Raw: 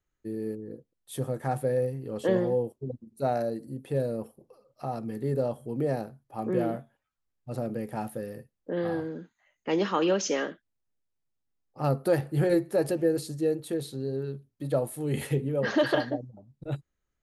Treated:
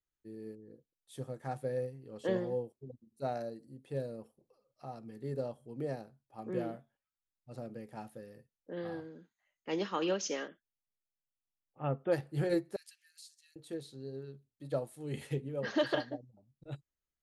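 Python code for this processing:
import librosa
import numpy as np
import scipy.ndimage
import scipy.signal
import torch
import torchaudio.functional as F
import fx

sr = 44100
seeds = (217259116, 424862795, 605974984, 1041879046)

y = fx.brickwall_lowpass(x, sr, high_hz=3600.0, at=(10.47, 12.11), fade=0.02)
y = fx.bessel_highpass(y, sr, hz=3000.0, order=8, at=(12.76, 13.56))
y = scipy.signal.sosfilt(scipy.signal.butter(2, 7000.0, 'lowpass', fs=sr, output='sos'), y)
y = fx.high_shelf(y, sr, hz=3500.0, db=8.0)
y = fx.upward_expand(y, sr, threshold_db=-35.0, expansion=1.5)
y = y * 10.0 ** (-6.0 / 20.0)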